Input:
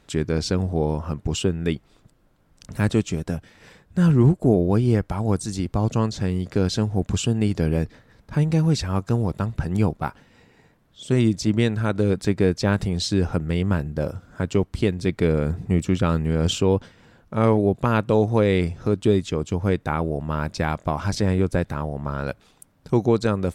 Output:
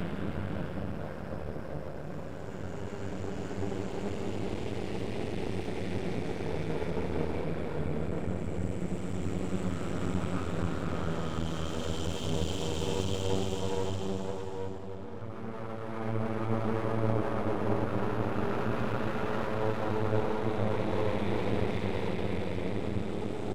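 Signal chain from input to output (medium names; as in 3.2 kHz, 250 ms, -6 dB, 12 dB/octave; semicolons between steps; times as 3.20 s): Paulstretch 4.5×, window 1.00 s, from 13.70 s; half-wave rectifier; echo from a far wall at 230 m, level -13 dB; trim -7.5 dB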